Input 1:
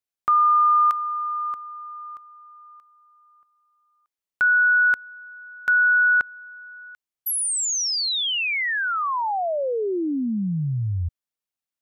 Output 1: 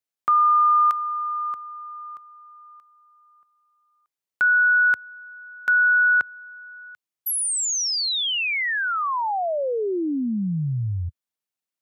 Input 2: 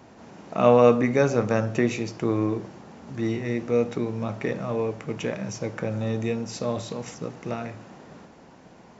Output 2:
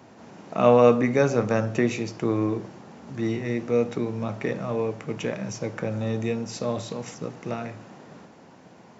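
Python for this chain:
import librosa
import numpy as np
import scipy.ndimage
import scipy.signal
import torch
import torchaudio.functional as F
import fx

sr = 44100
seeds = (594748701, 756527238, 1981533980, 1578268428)

y = scipy.signal.sosfilt(scipy.signal.butter(4, 84.0, 'highpass', fs=sr, output='sos'), x)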